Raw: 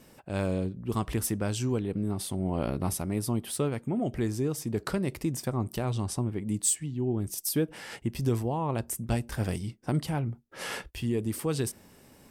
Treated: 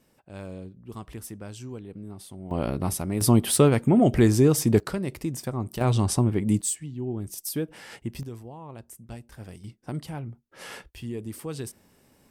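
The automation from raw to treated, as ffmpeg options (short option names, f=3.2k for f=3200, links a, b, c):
-af "asetnsamples=n=441:p=0,asendcmd='2.51 volume volume 2.5dB;3.21 volume volume 11dB;4.8 volume volume 0dB;5.81 volume volume 8dB;6.61 volume volume -2dB;8.23 volume volume -12dB;9.64 volume volume -5dB',volume=-9.5dB"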